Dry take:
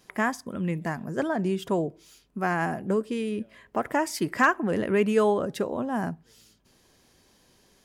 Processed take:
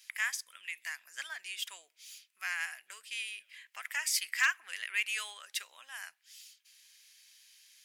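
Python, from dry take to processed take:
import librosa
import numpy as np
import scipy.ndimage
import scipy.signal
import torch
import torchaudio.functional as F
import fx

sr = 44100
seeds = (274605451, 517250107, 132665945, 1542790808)

y = scipy.signal.sosfilt(scipy.signal.cheby1(3, 1.0, 2200.0, 'highpass', fs=sr, output='sos'), x)
y = F.gain(torch.from_numpy(y), 5.0).numpy()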